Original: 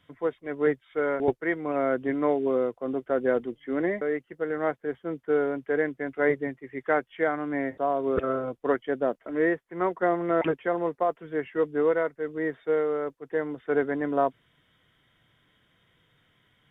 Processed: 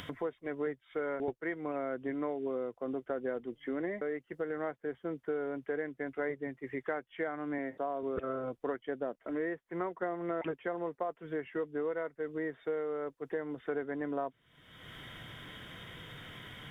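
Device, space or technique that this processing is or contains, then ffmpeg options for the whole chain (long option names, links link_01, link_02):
upward and downward compression: -filter_complex "[0:a]acompressor=mode=upward:threshold=-32dB:ratio=2.5,acompressor=threshold=-34dB:ratio=4,asettb=1/sr,asplit=3[link_01][link_02][link_03];[link_01]atrim=end=7.584[link_04];[link_02]atrim=start=7.58:end=8.03,asetpts=PTS-STARTPTS,afade=type=in:duration=0.004:curve=qsin,afade=type=out:start_time=0.446:duration=0.004:curve=qsin,highpass=140[link_05];[link_03]atrim=start=8.026[link_06];[link_04][link_05]acrossfade=duration=0.004:curve1=hsin:curve2=qsin[link_07];[link_07][link_06]acrossfade=duration=0.004:curve1=qsin:curve2=hsin"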